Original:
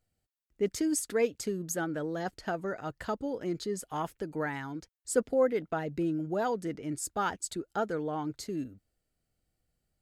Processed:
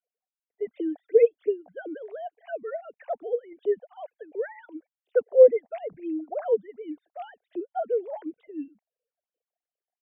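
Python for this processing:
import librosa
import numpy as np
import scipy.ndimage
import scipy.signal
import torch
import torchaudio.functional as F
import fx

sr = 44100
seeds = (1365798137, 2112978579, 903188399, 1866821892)

y = fx.sine_speech(x, sr)
y = fx.phaser_stages(y, sr, stages=8, low_hz=340.0, high_hz=1500.0, hz=2.8, feedback_pct=40)
y = fx.band_shelf(y, sr, hz=560.0, db=13.0, octaves=1.0)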